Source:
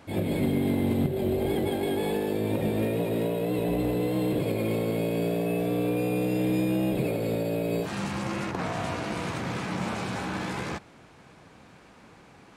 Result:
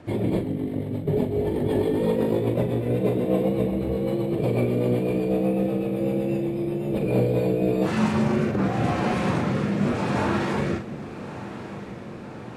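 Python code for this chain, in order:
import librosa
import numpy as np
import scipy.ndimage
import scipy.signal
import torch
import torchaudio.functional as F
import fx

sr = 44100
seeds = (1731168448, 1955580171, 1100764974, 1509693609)

y = fx.high_shelf(x, sr, hz=2200.0, db=-10.0)
y = fx.over_compress(y, sr, threshold_db=-29.0, ratio=-0.5)
y = fx.pitch_keep_formants(y, sr, semitones=1.5)
y = fx.rotary_switch(y, sr, hz=8.0, then_hz=0.85, switch_at_s=6.77)
y = fx.doubler(y, sr, ms=41.0, db=-7)
y = fx.echo_diffused(y, sr, ms=1224, feedback_pct=63, wet_db=-14)
y = y * 10.0 ** (7.5 / 20.0)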